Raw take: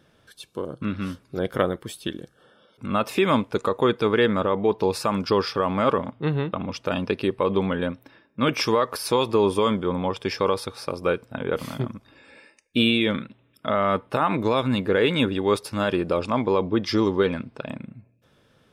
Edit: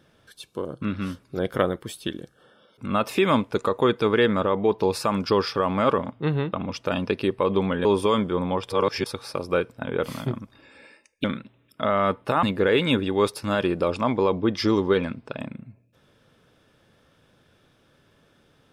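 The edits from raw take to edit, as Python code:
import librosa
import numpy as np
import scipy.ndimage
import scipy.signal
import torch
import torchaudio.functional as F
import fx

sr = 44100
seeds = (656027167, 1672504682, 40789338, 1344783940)

y = fx.edit(x, sr, fx.cut(start_s=7.85, length_s=1.53),
    fx.reverse_span(start_s=10.23, length_s=0.36),
    fx.cut(start_s=12.77, length_s=0.32),
    fx.cut(start_s=14.28, length_s=0.44), tone=tone)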